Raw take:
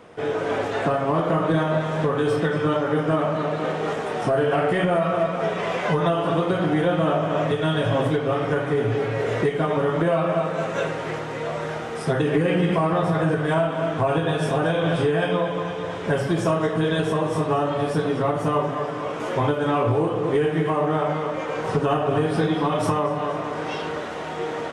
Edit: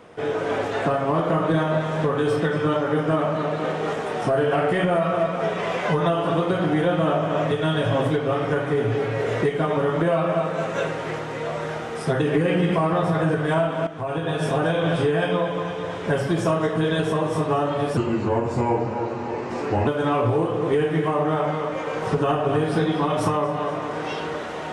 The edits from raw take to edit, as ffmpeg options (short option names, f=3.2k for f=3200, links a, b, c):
-filter_complex "[0:a]asplit=4[a][b][c][d];[a]atrim=end=13.87,asetpts=PTS-STARTPTS,afade=t=out:st=13.866:d=0.004:c=hsin:silence=0.223872[e];[b]atrim=start=13.87:end=17.974,asetpts=PTS-STARTPTS,afade=t=in:d=0.61:silence=0.223872[f];[c]atrim=start=17.97:end=19.49,asetpts=PTS-STARTPTS,asetrate=35280,aresample=44100[g];[d]atrim=start=19.486[h];[e][f]concat=n=2:v=0:a=1[i];[i][g]acrossfade=d=0.004:c1=hsin:c2=hsin[j];[j][h]acrossfade=d=0.004:c1=hsin:c2=hsin"